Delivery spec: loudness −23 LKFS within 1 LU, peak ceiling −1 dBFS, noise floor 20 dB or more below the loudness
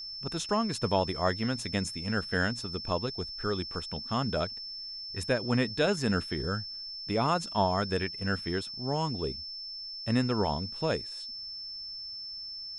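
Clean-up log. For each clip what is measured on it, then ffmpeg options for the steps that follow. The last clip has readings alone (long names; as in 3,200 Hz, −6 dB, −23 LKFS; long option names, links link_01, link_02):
interfering tone 5,300 Hz; level of the tone −38 dBFS; integrated loudness −31.5 LKFS; sample peak −12.5 dBFS; target loudness −23.0 LKFS
→ -af "bandreject=frequency=5300:width=30"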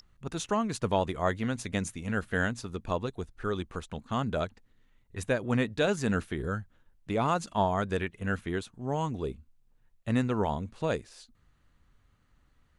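interfering tone none found; integrated loudness −31.5 LKFS; sample peak −13.0 dBFS; target loudness −23.0 LKFS
→ -af "volume=8.5dB"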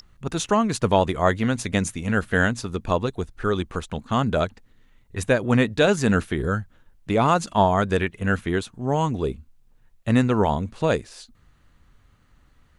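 integrated loudness −23.0 LKFS; sample peak −4.5 dBFS; background noise floor −58 dBFS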